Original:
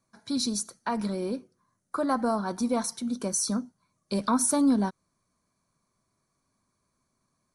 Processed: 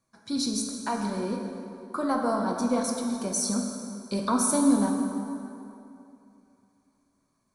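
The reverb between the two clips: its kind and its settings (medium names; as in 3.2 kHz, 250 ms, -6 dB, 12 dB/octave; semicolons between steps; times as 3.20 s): plate-style reverb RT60 2.8 s, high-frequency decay 0.65×, DRR 1 dB; trim -1.5 dB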